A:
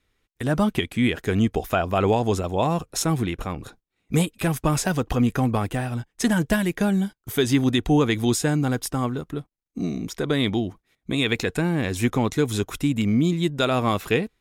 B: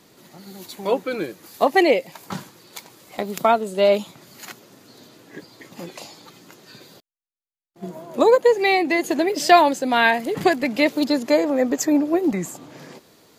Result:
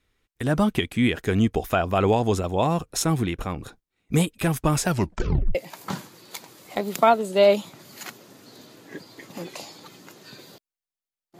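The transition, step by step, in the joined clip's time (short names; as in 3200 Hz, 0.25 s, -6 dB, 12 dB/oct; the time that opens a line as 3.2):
A
4.86 tape stop 0.69 s
5.55 switch to B from 1.97 s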